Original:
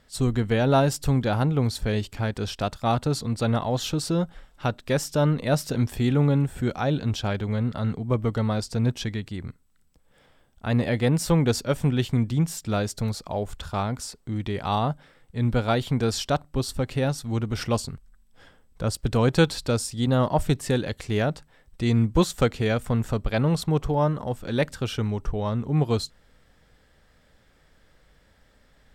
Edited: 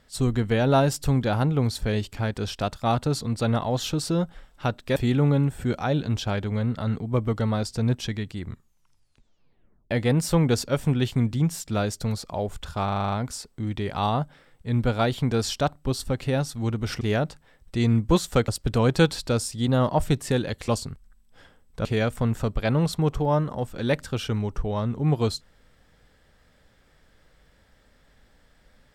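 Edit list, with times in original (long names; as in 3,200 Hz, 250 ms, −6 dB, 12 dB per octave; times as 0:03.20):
0:04.96–0:05.93: remove
0:09.39: tape stop 1.49 s
0:13.81: stutter 0.04 s, 8 plays
0:17.70–0:18.87: swap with 0:21.07–0:22.54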